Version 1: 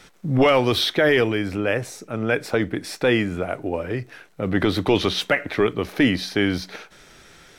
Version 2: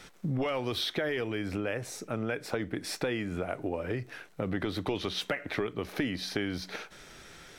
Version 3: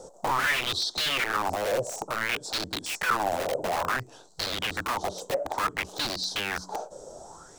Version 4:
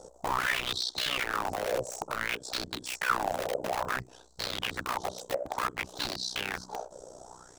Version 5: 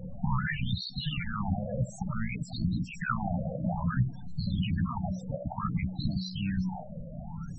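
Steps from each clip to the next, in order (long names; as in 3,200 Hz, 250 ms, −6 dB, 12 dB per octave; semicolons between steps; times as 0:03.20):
downward compressor 6 to 1, threshold −27 dBFS, peak gain reduction 13.5 dB; level −2 dB
drawn EQ curve 240 Hz 0 dB, 940 Hz +4 dB, 2,200 Hz −30 dB, 7,500 Hz +11 dB, 11,000 Hz −8 dB; wrap-around overflow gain 29.5 dB; auto-filter bell 0.57 Hz 520–4,400 Hz +18 dB
amplitude modulation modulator 62 Hz, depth 75%
converter with a step at zero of −39 dBFS; low shelf with overshoot 260 Hz +13.5 dB, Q 3; spectral peaks only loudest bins 16; level −3 dB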